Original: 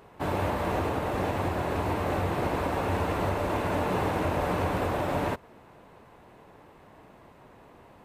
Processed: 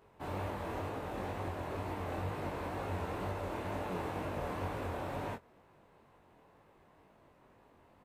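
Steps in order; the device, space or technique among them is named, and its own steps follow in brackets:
double-tracked vocal (double-tracking delay 21 ms −13 dB; chorus effect 2.1 Hz, delay 18.5 ms, depth 6.4 ms)
level −8 dB

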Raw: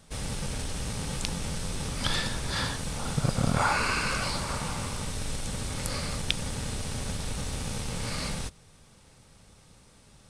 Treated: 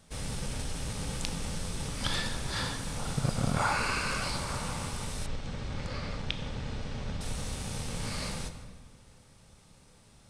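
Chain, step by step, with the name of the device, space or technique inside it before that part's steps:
compressed reverb return (on a send at −5 dB: convolution reverb RT60 1.4 s, pre-delay 18 ms + downward compressor, threshold −29 dBFS, peak gain reduction 8.5 dB)
0:05.26–0:07.21: on the sum: high-frequency loss of the air 160 metres
level −3.5 dB

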